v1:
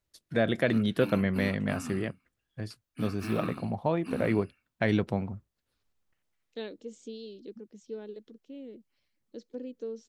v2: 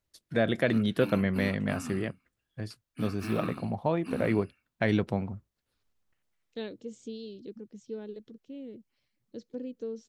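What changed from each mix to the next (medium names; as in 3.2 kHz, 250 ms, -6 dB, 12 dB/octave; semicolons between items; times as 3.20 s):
second voice: remove high-pass 230 Hz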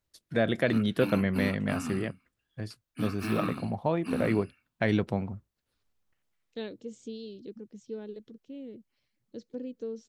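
background +4.0 dB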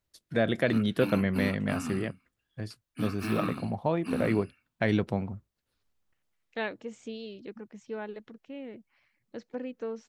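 second voice: add high-order bell 1.3 kHz +15 dB 2.3 oct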